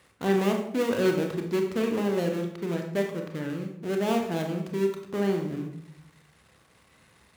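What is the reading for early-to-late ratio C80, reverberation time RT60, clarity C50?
9.5 dB, 0.70 s, 6.0 dB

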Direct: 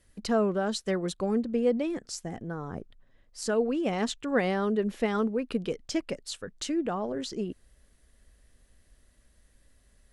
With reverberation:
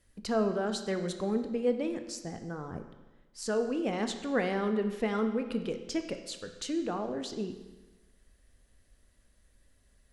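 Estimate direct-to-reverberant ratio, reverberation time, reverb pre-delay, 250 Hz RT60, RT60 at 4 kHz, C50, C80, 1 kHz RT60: 7.0 dB, 1.2 s, 17 ms, 1.2 s, 1.1 s, 9.0 dB, 10.5 dB, 1.2 s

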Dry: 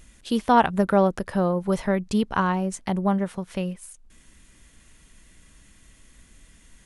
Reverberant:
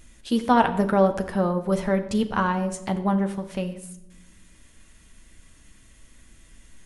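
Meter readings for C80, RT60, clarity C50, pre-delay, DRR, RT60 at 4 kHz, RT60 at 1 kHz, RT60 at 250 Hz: 14.5 dB, 0.85 s, 12.0 dB, 9 ms, 6.0 dB, 0.60 s, 0.75 s, 1.2 s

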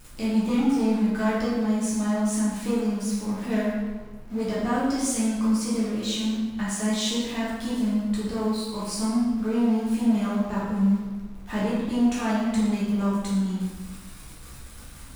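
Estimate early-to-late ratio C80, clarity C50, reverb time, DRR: 2.0 dB, −1.0 dB, 1.4 s, −9.0 dB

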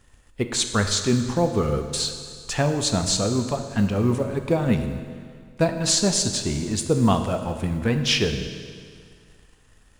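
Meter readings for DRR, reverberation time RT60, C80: 6.5 dB, 2.0 s, 9.0 dB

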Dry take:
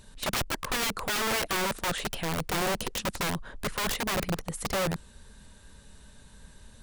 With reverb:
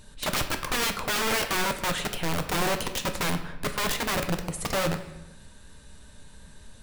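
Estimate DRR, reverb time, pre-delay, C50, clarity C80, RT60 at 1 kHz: 6.0 dB, 0.90 s, 3 ms, 10.5 dB, 12.5 dB, 0.90 s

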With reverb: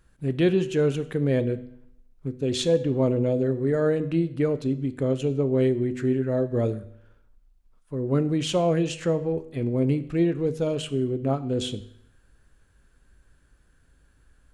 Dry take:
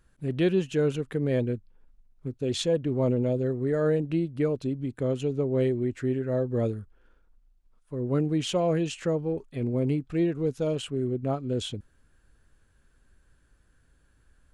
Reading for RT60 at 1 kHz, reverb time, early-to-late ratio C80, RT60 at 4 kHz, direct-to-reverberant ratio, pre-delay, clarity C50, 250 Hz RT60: 0.75 s, 0.75 s, 18.0 dB, 0.65 s, 11.5 dB, 8 ms, 15.5 dB, 0.70 s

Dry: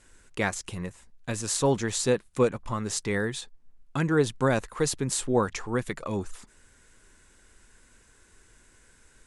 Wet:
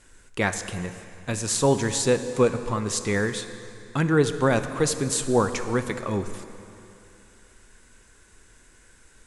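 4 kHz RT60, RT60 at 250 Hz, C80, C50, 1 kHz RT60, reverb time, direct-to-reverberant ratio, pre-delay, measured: 2.5 s, 2.8 s, 10.5 dB, 10.0 dB, 3.0 s, 2.9 s, 9.0 dB, 8 ms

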